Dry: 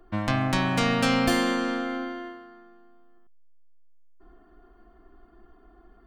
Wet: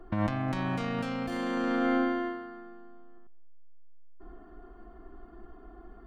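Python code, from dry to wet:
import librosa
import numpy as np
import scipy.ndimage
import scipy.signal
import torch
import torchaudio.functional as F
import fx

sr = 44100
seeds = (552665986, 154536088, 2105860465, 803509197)

p1 = fx.high_shelf(x, sr, hz=2600.0, db=-10.5)
p2 = fx.over_compress(p1, sr, threshold_db=-31.0, ratio=-1.0)
p3 = p2 + fx.echo_single(p2, sr, ms=205, db=-23.5, dry=0)
y = p3 * librosa.db_to_amplitude(1.0)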